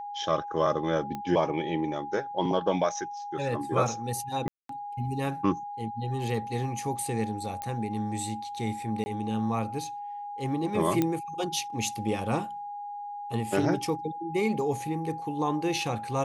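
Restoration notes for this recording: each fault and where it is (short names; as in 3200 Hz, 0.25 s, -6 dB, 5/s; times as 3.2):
tone 820 Hz -35 dBFS
1.15 pop -21 dBFS
4.48–4.69 gap 0.213 s
7.62 pop -19 dBFS
9.04–9.06 gap 20 ms
11.02 pop -12 dBFS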